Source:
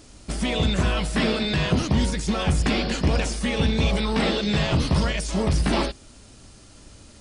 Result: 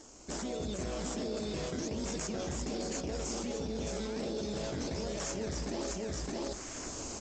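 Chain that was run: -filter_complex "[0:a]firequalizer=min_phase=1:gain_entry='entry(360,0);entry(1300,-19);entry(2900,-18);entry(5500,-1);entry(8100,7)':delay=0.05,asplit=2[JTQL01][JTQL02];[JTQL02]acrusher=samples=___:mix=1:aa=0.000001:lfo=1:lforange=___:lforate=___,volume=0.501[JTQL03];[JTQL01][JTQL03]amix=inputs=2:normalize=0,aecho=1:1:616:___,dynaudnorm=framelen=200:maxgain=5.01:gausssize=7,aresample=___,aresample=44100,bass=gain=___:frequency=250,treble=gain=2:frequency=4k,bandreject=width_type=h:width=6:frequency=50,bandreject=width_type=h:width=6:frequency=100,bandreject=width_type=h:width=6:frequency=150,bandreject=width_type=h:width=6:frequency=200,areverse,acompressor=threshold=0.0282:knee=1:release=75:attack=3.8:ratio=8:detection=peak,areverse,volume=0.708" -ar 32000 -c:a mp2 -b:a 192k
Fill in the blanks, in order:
17, 17, 1.3, 0.422, 16000, -14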